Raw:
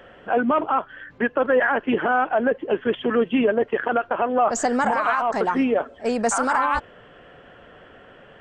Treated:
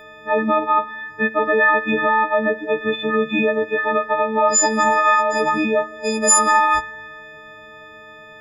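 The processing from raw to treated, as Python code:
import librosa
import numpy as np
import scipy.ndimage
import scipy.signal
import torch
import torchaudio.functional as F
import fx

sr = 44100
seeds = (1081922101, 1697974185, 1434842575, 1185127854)

y = fx.freq_snap(x, sr, grid_st=6)
y = fx.rev_spring(y, sr, rt60_s=1.7, pass_ms=(54,), chirp_ms=50, drr_db=16.5)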